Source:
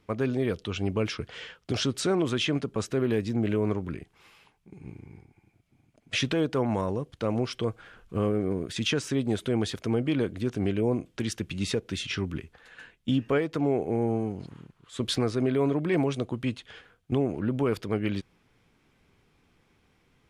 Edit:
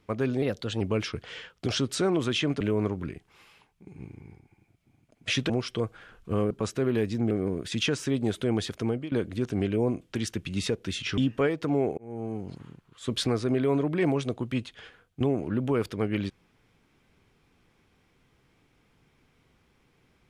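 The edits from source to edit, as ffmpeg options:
-filter_complex "[0:a]asplit=10[a][b][c][d][e][f][g][h][i][j];[a]atrim=end=0.424[k];[b]atrim=start=0.42:end=0.86,asetpts=PTS-STARTPTS,asetrate=50274,aresample=44100,atrim=end_sample=17021,asetpts=PTS-STARTPTS[l];[c]atrim=start=0.856:end=2.662[m];[d]atrim=start=3.458:end=6.352[n];[e]atrim=start=7.338:end=8.352[o];[f]atrim=start=2.658:end=3.462[p];[g]atrim=start=8.348:end=10.16,asetpts=PTS-STARTPTS,afade=t=out:st=1.442:d=0.37:c=qsin:silence=0.105925[q];[h]atrim=start=10.16:end=12.222,asetpts=PTS-STARTPTS,afade=t=in:d=0.004:c=hsin:silence=0.105925[r];[i]atrim=start=13.088:end=13.89,asetpts=PTS-STARTPTS,afade=t=out:st=0.798:d=0.004:c=hsin[s];[j]atrim=start=13.89,asetpts=PTS-STARTPTS,afade=t=in:d=0.55[t];[k][l]acrossfade=d=0.004:c1=hsin:c2=hsin[u];[u][m]acrossfade=d=0.004:c1=hsin:c2=hsin[v];[v][n]acrossfade=d=0.004:c1=hsin:c2=hsin[w];[w][o]acrossfade=d=0.004:c1=hsin:c2=hsin[x];[x][p]acrossfade=d=0.004:c1=hsin:c2=hsin[y];[q][r]concat=n=2:v=0:a=1[z];[y][z]acrossfade=d=0.004:c1=hsin:c2=hsin[aa];[s][t]concat=n=2:v=0:a=1[ab];[aa][ab]acrossfade=d=0.004:c1=hsin:c2=hsin"

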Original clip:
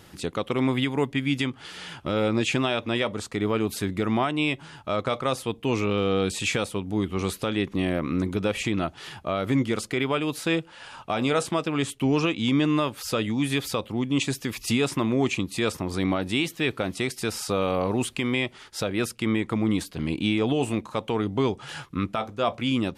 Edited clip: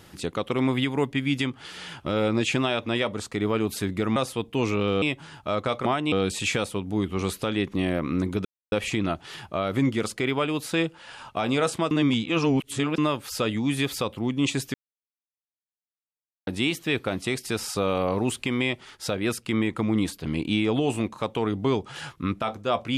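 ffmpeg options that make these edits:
-filter_complex "[0:a]asplit=10[a][b][c][d][e][f][g][h][i][j];[a]atrim=end=4.162[k];[b]atrim=start=5.258:end=6.122[l];[c]atrim=start=4.428:end=5.262[m];[d]atrim=start=4.158:end=4.432[n];[e]atrim=start=6.118:end=8.45,asetpts=PTS-STARTPTS,afade=t=out:st=2.328:d=0.004:c=hsin,apad=pad_dur=0.27[o];[f]atrim=start=8.45:end=11.642,asetpts=PTS-STARTPTS,afade=t=in:d=0.004:c=hsin[p];[g]atrim=start=11.638:end=12.712,asetpts=PTS-STARTPTS,areverse[q];[h]atrim=start=12.708:end=14.47,asetpts=PTS-STARTPTS,afade=t=out:st=1.758:d=0.004:c=hsin[r];[i]atrim=start=14.47:end=16.2,asetpts=PTS-STARTPTS,volume=0[s];[j]atrim=start=16.2,asetpts=PTS-STARTPTS,afade=t=in:d=0.004:c=hsin[t];[k][l]acrossfade=d=0.004:c1=hsin:c2=hsin[u];[u][m]acrossfade=d=0.004:c1=hsin:c2=hsin[v];[v][n]acrossfade=d=0.004:c1=hsin:c2=hsin[w];[o][p]concat=n=2:v=0:a=1[x];[w][x]acrossfade=d=0.004:c1=hsin:c2=hsin[y];[y][q]acrossfade=d=0.004:c1=hsin:c2=hsin[z];[r][s][t]concat=n=3:v=0:a=1[aa];[z][aa]acrossfade=d=0.004:c1=hsin:c2=hsin"

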